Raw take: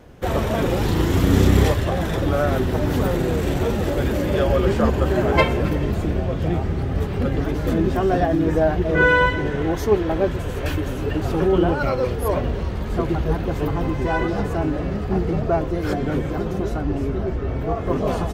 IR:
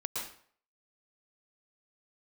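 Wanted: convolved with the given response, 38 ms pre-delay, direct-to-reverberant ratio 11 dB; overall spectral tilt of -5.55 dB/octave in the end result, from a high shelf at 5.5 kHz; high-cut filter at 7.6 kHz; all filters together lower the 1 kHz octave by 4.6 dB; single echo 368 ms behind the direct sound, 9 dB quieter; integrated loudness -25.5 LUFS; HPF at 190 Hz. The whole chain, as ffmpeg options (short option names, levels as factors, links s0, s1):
-filter_complex "[0:a]highpass=190,lowpass=7600,equalizer=f=1000:t=o:g=-6,highshelf=f=5500:g=-9,aecho=1:1:368:0.355,asplit=2[s0][s1];[1:a]atrim=start_sample=2205,adelay=38[s2];[s1][s2]afir=irnorm=-1:irlink=0,volume=0.2[s3];[s0][s3]amix=inputs=2:normalize=0,volume=0.794"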